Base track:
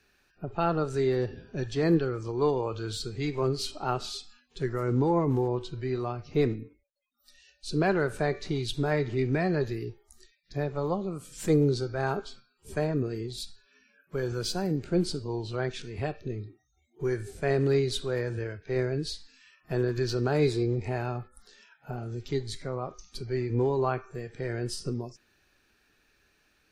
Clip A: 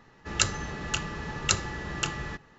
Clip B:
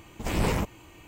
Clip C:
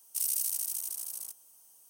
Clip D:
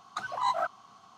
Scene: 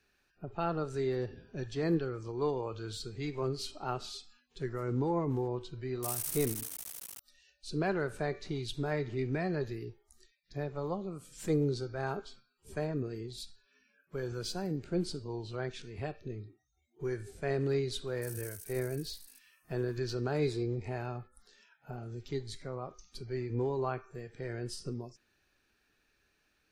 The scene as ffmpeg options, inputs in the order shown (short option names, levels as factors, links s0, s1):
-filter_complex "[3:a]asplit=2[s0][s1];[0:a]volume=0.473[s2];[s0]acrusher=bits=5:mix=0:aa=0.000001,atrim=end=1.89,asetpts=PTS-STARTPTS,volume=0.473,afade=t=in:d=0.004:c=hsin,afade=t=out:st=1.886:d=0.004:c=hsin,adelay=5880[s3];[s1]atrim=end=1.89,asetpts=PTS-STARTPTS,volume=0.15,afade=t=in:d=0.004:c=hsin,afade=t=out:st=1.886:d=0.004:c=hsin,adelay=18070[s4];[s2][s3][s4]amix=inputs=3:normalize=0"